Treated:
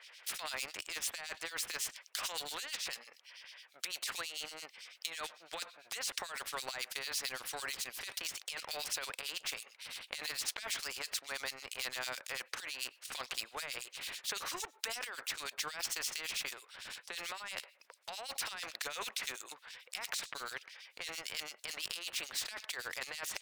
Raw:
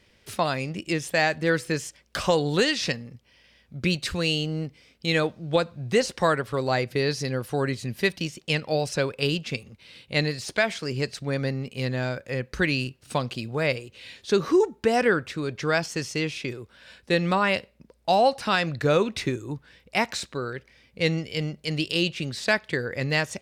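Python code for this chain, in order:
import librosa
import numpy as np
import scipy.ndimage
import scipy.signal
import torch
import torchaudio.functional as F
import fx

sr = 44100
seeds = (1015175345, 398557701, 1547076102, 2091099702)

y = scipy.signal.sosfilt(scipy.signal.bessel(4, 1200.0, 'highpass', norm='mag', fs=sr, output='sos'), x)
y = fx.high_shelf(y, sr, hz=9500.0, db=-3.5)
y = fx.leveller(y, sr, passes=1)
y = fx.over_compress(y, sr, threshold_db=-32.0, ratio=-1.0)
y = fx.harmonic_tremolo(y, sr, hz=9.0, depth_pct=100, crossover_hz=2400.0)
y = fx.spectral_comp(y, sr, ratio=2.0)
y = y * librosa.db_to_amplitude(-2.5)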